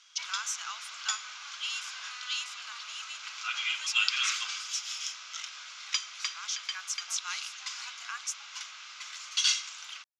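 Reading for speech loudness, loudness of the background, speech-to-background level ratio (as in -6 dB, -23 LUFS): -37.5 LUFS, -34.0 LUFS, -3.5 dB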